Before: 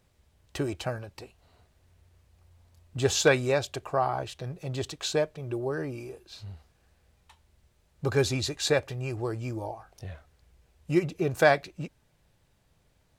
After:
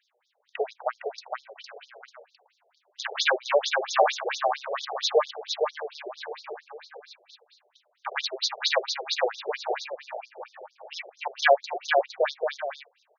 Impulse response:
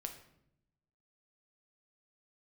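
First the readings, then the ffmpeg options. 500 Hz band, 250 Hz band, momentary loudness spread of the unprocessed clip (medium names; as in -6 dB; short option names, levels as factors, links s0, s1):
+1.5 dB, under -15 dB, 20 LU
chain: -af "aeval=exprs='0.422*(cos(1*acos(clip(val(0)/0.422,-1,1)))-cos(1*PI/2))+0.0596*(cos(8*acos(clip(val(0)/0.422,-1,1)))-cos(8*PI/2))':c=same,aecho=1:1:460|782|1007|1165|1276:0.631|0.398|0.251|0.158|0.1,afftfilt=real='re*between(b*sr/1024,540*pow(4900/540,0.5+0.5*sin(2*PI*4.4*pts/sr))/1.41,540*pow(4900/540,0.5+0.5*sin(2*PI*4.4*pts/sr))*1.41)':imag='im*between(b*sr/1024,540*pow(4900/540,0.5+0.5*sin(2*PI*4.4*pts/sr))/1.41,540*pow(4900/540,0.5+0.5*sin(2*PI*4.4*pts/sr))*1.41)':win_size=1024:overlap=0.75,volume=2.24"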